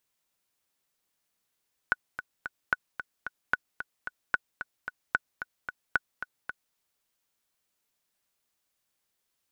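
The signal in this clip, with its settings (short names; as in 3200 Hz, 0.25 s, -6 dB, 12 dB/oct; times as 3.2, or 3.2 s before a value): metronome 223 bpm, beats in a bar 3, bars 6, 1480 Hz, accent 11 dB -10 dBFS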